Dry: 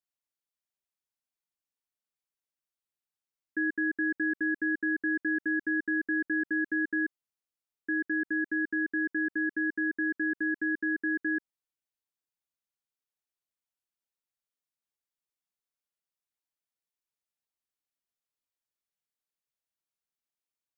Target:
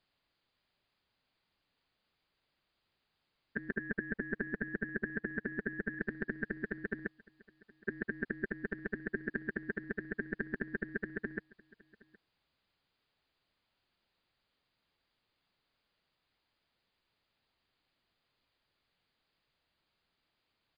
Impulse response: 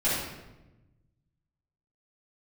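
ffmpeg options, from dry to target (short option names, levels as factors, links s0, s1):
-filter_complex "[0:a]asplit=3[s0][s1][s2];[s0]afade=t=out:st=3.72:d=0.02[s3];[s1]aemphasis=mode=reproduction:type=75fm,afade=t=in:st=3.72:d=0.02,afade=t=out:st=5.99:d=0.02[s4];[s2]afade=t=in:st=5.99:d=0.02[s5];[s3][s4][s5]amix=inputs=3:normalize=0,afftfilt=real='re*lt(hypot(re,im),0.0562)':imag='im*lt(hypot(re,im),0.0562)':win_size=1024:overlap=0.75,lowshelf=f=210:g=6,aecho=1:1:768:0.0668,volume=7.08" -ar 11025 -c:a libmp3lame -b:a 64k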